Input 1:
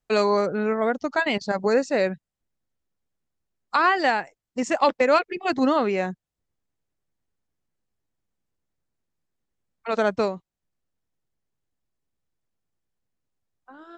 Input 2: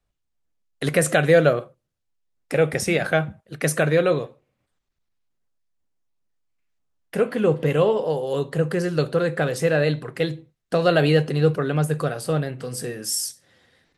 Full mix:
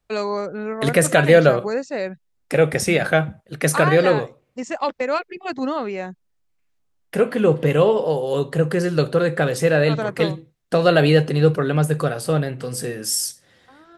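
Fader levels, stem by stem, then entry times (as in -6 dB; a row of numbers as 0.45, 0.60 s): -3.5, +3.0 dB; 0.00, 0.00 s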